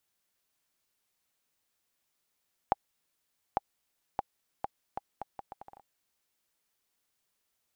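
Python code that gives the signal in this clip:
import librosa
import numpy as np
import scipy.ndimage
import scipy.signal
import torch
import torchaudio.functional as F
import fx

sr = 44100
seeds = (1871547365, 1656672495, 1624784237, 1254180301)

y = fx.bouncing_ball(sr, first_gap_s=0.85, ratio=0.73, hz=802.0, decay_ms=25.0, level_db=-11.5)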